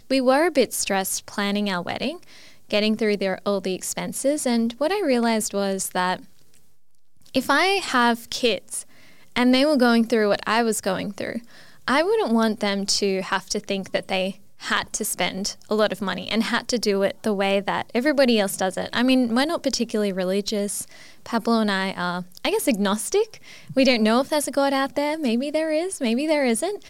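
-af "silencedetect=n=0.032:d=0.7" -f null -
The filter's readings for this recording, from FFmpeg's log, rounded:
silence_start: 6.16
silence_end: 7.35 | silence_duration: 1.18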